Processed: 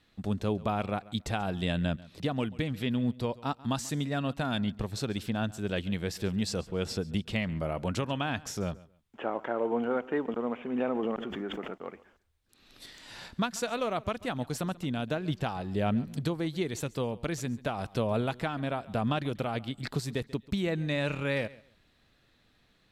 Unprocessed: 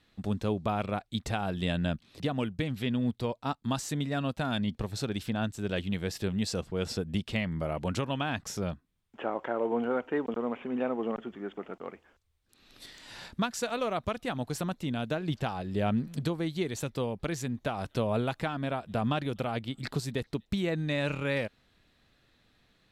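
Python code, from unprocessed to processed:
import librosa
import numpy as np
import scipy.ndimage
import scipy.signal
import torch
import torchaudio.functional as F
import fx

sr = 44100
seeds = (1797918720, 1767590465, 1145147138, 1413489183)

y = fx.echo_feedback(x, sr, ms=138, feedback_pct=21, wet_db=-20.5)
y = fx.pre_swell(y, sr, db_per_s=27.0, at=(10.73, 11.79))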